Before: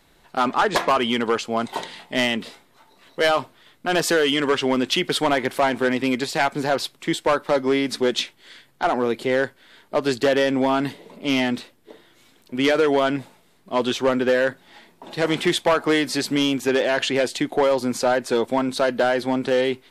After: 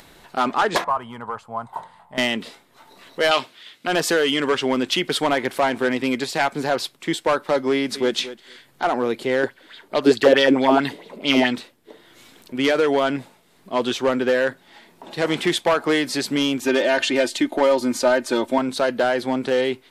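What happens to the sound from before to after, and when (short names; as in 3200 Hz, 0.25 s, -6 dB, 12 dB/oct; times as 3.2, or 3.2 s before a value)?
0.84–2.18 EQ curve 120 Hz 0 dB, 330 Hz -20 dB, 990 Hz +1 dB, 2400 Hz -21 dB, 6100 Hz -23 dB, 8700 Hz -14 dB
3.31–3.87 weighting filter D
7.72–8.16 echo throw 0.23 s, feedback 10%, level -14.5 dB
9.43–11.56 LFO bell 4.6 Hz 300–4100 Hz +13 dB
16.61–18.58 comb 3.3 ms
whole clip: low shelf 87 Hz -5.5 dB; upward compressor, threshold -39 dBFS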